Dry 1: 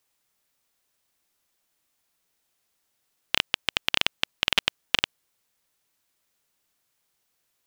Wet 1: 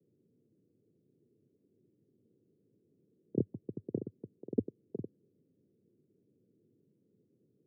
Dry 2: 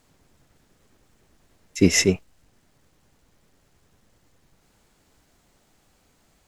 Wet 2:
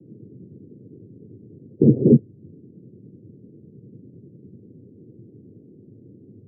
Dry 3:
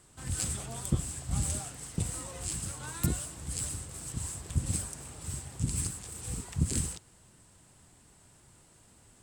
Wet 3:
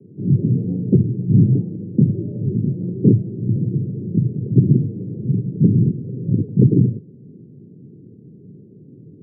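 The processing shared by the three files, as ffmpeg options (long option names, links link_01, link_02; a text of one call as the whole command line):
ffmpeg -i in.wav -af "aresample=8000,aeval=exprs='0.75*sin(PI/2*8.91*val(0)/0.75)':channel_layout=same,aresample=44100,afreqshift=50,asuperpass=centerf=210:order=12:qfactor=0.62,volume=-2dB" out.wav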